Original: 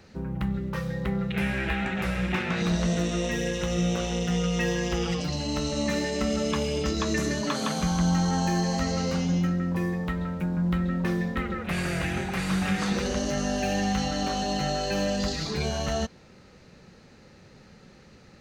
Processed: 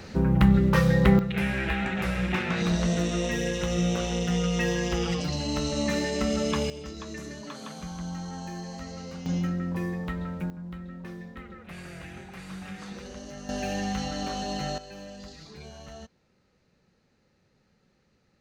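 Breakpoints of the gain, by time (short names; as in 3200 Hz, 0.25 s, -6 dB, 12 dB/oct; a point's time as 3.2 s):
+10 dB
from 1.19 s 0 dB
from 6.7 s -12 dB
from 9.26 s -3 dB
from 10.5 s -13.5 dB
from 13.49 s -4 dB
from 14.78 s -16 dB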